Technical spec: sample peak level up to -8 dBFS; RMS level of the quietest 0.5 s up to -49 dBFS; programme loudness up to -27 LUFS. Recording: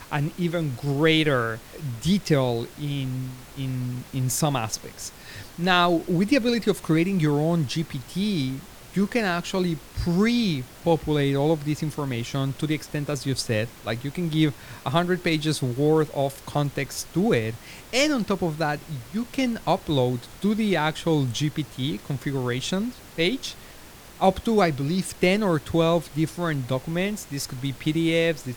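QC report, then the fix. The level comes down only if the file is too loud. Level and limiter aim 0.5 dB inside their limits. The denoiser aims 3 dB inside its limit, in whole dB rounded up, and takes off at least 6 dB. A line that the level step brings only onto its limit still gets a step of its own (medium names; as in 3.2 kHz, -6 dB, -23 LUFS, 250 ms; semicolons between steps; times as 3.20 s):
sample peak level -5.0 dBFS: fail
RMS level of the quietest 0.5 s -45 dBFS: fail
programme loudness -25.0 LUFS: fail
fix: noise reduction 6 dB, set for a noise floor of -45 dBFS; trim -2.5 dB; peak limiter -8.5 dBFS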